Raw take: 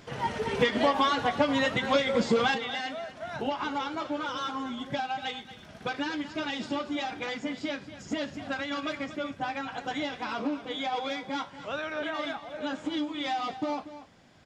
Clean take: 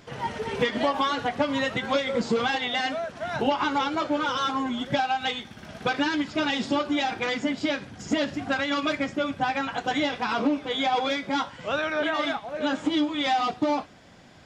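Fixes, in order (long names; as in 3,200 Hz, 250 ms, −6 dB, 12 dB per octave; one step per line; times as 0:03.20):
echo removal 237 ms −13.5 dB
level correction +7 dB, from 0:02.54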